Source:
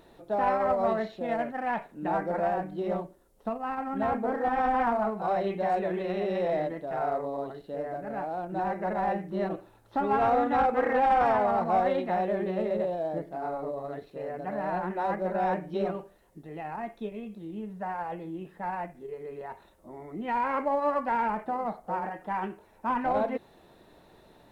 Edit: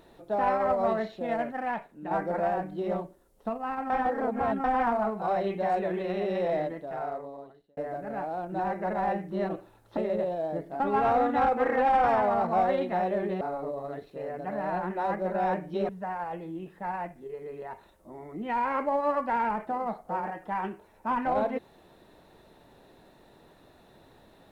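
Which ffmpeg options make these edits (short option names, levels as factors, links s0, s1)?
-filter_complex "[0:a]asplit=9[s0][s1][s2][s3][s4][s5][s6][s7][s8];[s0]atrim=end=2.11,asetpts=PTS-STARTPTS,afade=t=out:st=1.62:d=0.49:c=qua:silence=0.501187[s9];[s1]atrim=start=2.11:end=3.902,asetpts=PTS-STARTPTS,afade=t=in:d=0.004:c=hsin:silence=0.501187[s10];[s2]atrim=start=3.898:end=4.642,asetpts=PTS-STARTPTS,areverse[s11];[s3]atrim=start=4.638:end=7.77,asetpts=PTS-STARTPTS,afade=t=out:st=1.932:d=1.2[s12];[s4]atrim=start=7.77:end=9.972,asetpts=PTS-STARTPTS,afade=t=in:d=0.004:c=hsin[s13];[s5]atrim=start=12.578:end=13.412[s14];[s6]atrim=start=9.968:end=12.582[s15];[s7]atrim=start=13.408:end=15.892[s16];[s8]atrim=start=17.678[s17];[s9][s10]concat=n=2:v=0:a=1[s18];[s18][s11]acrossfade=d=0.004:c1=hsin:c2=hsin[s19];[s12][s13]concat=n=2:v=0:a=1[s20];[s19][s20]acrossfade=d=0.004:c1=hsin:c2=hsin[s21];[s21][s14]acrossfade=d=0.004:c1=hsin:c2=hsin[s22];[s22][s15]acrossfade=d=0.004:c1=hsin:c2=hsin[s23];[s23][s16]acrossfade=d=0.004:c1=hsin:c2=hsin[s24];[s24][s17]acrossfade=d=0.004:c1=hsin:c2=hsin"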